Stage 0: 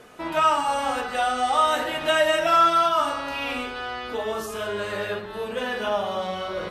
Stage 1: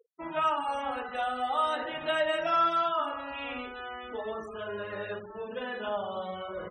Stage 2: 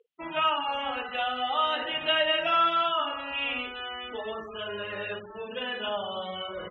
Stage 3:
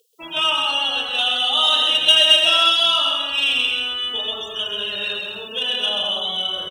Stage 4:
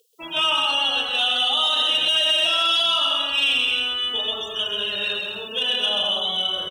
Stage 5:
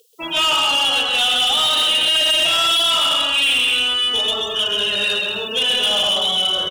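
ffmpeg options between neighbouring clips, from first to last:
ffmpeg -i in.wav -af "afftfilt=real='re*gte(hypot(re,im),0.0282)':imag='im*gte(hypot(re,im),0.0282)':win_size=1024:overlap=0.75,highshelf=frequency=6700:gain=-9.5,volume=-7.5dB" out.wav
ffmpeg -i in.wav -af "lowpass=frequency=3000:width_type=q:width=4.1" out.wav
ffmpeg -i in.wav -af "aexciter=amount=9:drive=9.8:freq=3300,aecho=1:1:130|214.5|269.4|305.1|328.3:0.631|0.398|0.251|0.158|0.1" out.wav
ffmpeg -i in.wav -af "alimiter=limit=-11.5dB:level=0:latency=1:release=32" out.wav
ffmpeg -i in.wav -af "asoftclip=type=tanh:threshold=-21dB,volume=8dB" out.wav

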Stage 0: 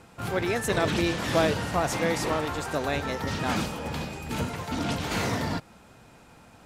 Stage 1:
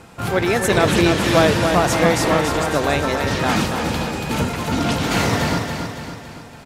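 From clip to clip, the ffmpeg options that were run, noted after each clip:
ffmpeg -i in.wav -af "aecho=1:1:280|560|840|1120|1400|1680:0.501|0.256|0.13|0.0665|0.0339|0.0173,volume=8.5dB" out.wav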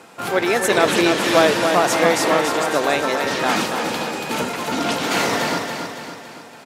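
ffmpeg -i in.wav -af "highpass=290,volume=1dB" out.wav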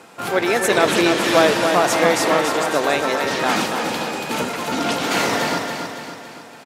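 ffmpeg -i in.wav -filter_complex "[0:a]asplit=2[link_01][link_02];[link_02]adelay=130,highpass=300,lowpass=3400,asoftclip=type=hard:threshold=-11dB,volume=-13dB[link_03];[link_01][link_03]amix=inputs=2:normalize=0" out.wav

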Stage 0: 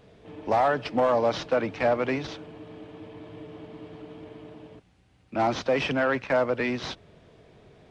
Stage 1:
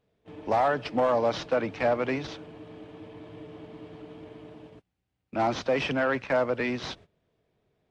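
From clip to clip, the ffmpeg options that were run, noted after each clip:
ffmpeg -i in.wav -af "agate=range=-18dB:threshold=-47dB:ratio=16:detection=peak,volume=-1.5dB" out.wav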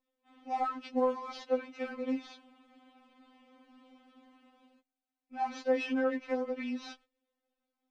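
ffmpeg -i in.wav -af "afftfilt=real='re*3.46*eq(mod(b,12),0)':imag='im*3.46*eq(mod(b,12),0)':win_size=2048:overlap=0.75,volume=-7.5dB" out.wav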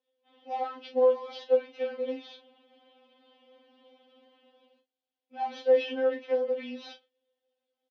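ffmpeg -i in.wav -filter_complex "[0:a]highpass=260,equalizer=frequency=290:width_type=q:width=4:gain=-6,equalizer=frequency=480:width_type=q:width=4:gain=10,equalizer=frequency=1200:width_type=q:width=4:gain=-9,equalizer=frequency=2200:width_type=q:width=4:gain=-4,equalizer=frequency=3200:width_type=q:width=4:gain=8,lowpass=frequency=5200:width=0.5412,lowpass=frequency=5200:width=1.3066,asplit=2[link_01][link_02];[link_02]adelay=37,volume=-9.5dB[link_03];[link_01][link_03]amix=inputs=2:normalize=0" out.wav

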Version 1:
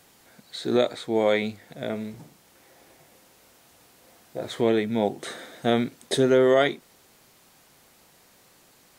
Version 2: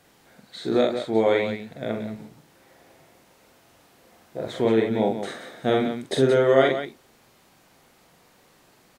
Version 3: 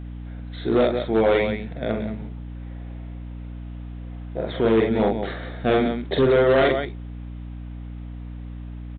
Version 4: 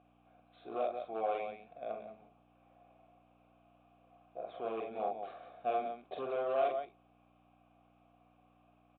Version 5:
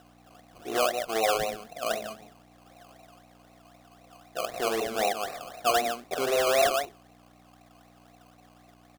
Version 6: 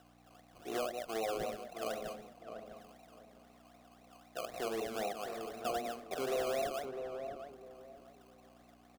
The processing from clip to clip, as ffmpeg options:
ffmpeg -i in.wav -filter_complex "[0:a]highshelf=frequency=4000:gain=-8,asplit=2[link_01][link_02];[link_02]aecho=0:1:45|176:0.708|0.376[link_03];[link_01][link_03]amix=inputs=2:normalize=0" out.wav
ffmpeg -i in.wav -af "aresample=8000,asoftclip=type=hard:threshold=-16dB,aresample=44100,aeval=exprs='val(0)+0.0158*(sin(2*PI*60*n/s)+sin(2*PI*2*60*n/s)/2+sin(2*PI*3*60*n/s)/3+sin(2*PI*4*60*n/s)/4+sin(2*PI*5*60*n/s)/5)':channel_layout=same,volume=3dB" out.wav
ffmpeg -i in.wav -filter_complex "[0:a]asplit=3[link_01][link_02][link_03];[link_01]bandpass=frequency=730:width_type=q:width=8,volume=0dB[link_04];[link_02]bandpass=frequency=1090:width_type=q:width=8,volume=-6dB[link_05];[link_03]bandpass=frequency=2440:width_type=q:width=8,volume=-9dB[link_06];[link_04][link_05][link_06]amix=inputs=3:normalize=0,volume=-5dB" out.wav
ffmpeg -i in.wav -filter_complex "[0:a]asplit=2[link_01][link_02];[link_02]alimiter=level_in=4.5dB:limit=-24dB:level=0:latency=1:release=314,volume=-4.5dB,volume=2dB[link_03];[link_01][link_03]amix=inputs=2:normalize=0,acrusher=samples=19:mix=1:aa=0.000001:lfo=1:lforange=11.4:lforate=3.9,volume=4dB" out.wav
ffmpeg -i in.wav -filter_complex "[0:a]acrossover=split=500[link_01][link_02];[link_02]acompressor=threshold=-33dB:ratio=4[link_03];[link_01][link_03]amix=inputs=2:normalize=0,asplit=2[link_04][link_05];[link_05]adelay=654,lowpass=frequency=1100:poles=1,volume=-6dB,asplit=2[link_06][link_07];[link_07]adelay=654,lowpass=frequency=1100:poles=1,volume=0.29,asplit=2[link_08][link_09];[link_09]adelay=654,lowpass=frequency=1100:poles=1,volume=0.29,asplit=2[link_10][link_11];[link_11]adelay=654,lowpass=frequency=1100:poles=1,volume=0.29[link_12];[link_06][link_08][link_10][link_12]amix=inputs=4:normalize=0[link_13];[link_04][link_13]amix=inputs=2:normalize=0,volume=-6.5dB" out.wav

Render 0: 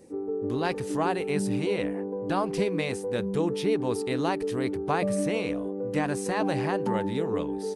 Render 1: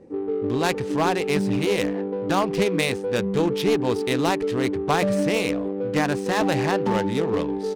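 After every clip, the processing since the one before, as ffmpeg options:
ffmpeg -i in.wav -af "adynamicsmooth=sensitivity=6.5:basefreq=1300,aeval=exprs='clip(val(0),-1,0.0841)':channel_layout=same,highshelf=frequency=3000:gain=10.5,volume=5dB" out.wav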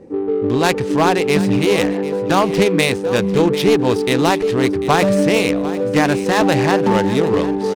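ffmpeg -i in.wav -af "aecho=1:1:745|1490|2235:0.178|0.0445|0.0111,volume=7dB" out.wav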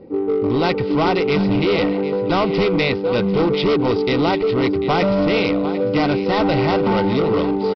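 ffmpeg -i in.wav -af "aresample=11025,asoftclip=type=hard:threshold=-13.5dB,aresample=44100,asuperstop=centerf=1700:order=20:qfactor=6.7" out.wav

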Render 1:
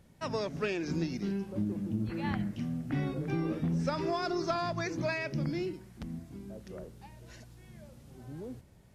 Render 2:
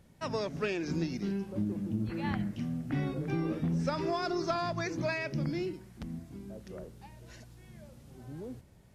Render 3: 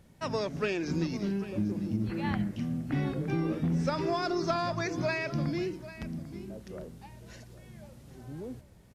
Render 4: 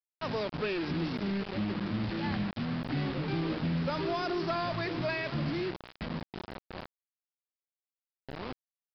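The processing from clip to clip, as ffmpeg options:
ffmpeg -i in.wav -af anull out.wav
ffmpeg -i in.wav -af "aecho=1:1:795:0.168,volume=2dB" out.wav
ffmpeg -i in.wav -af "acrusher=bits=5:mix=0:aa=0.000001,asoftclip=type=tanh:threshold=-25dB,aresample=11025,aresample=44100" out.wav

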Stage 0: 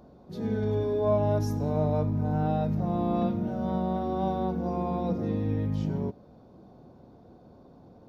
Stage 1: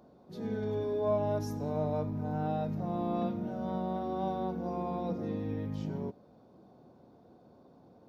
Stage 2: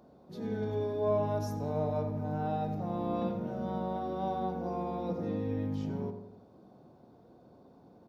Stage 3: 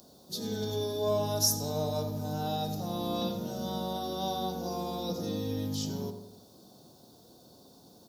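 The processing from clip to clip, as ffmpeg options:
ffmpeg -i in.wav -af "highpass=frequency=170:poles=1,volume=-4dB" out.wav
ffmpeg -i in.wav -filter_complex "[0:a]asplit=2[link_01][link_02];[link_02]adelay=88,lowpass=frequency=1700:poles=1,volume=-7.5dB,asplit=2[link_03][link_04];[link_04]adelay=88,lowpass=frequency=1700:poles=1,volume=0.52,asplit=2[link_05][link_06];[link_06]adelay=88,lowpass=frequency=1700:poles=1,volume=0.52,asplit=2[link_07][link_08];[link_08]adelay=88,lowpass=frequency=1700:poles=1,volume=0.52,asplit=2[link_09][link_10];[link_10]adelay=88,lowpass=frequency=1700:poles=1,volume=0.52,asplit=2[link_11][link_12];[link_12]adelay=88,lowpass=frequency=1700:poles=1,volume=0.52[link_13];[link_01][link_03][link_05][link_07][link_09][link_11][link_13]amix=inputs=7:normalize=0" out.wav
ffmpeg -i in.wav -af "aexciter=amount=7.1:drive=9.4:freq=3400" out.wav

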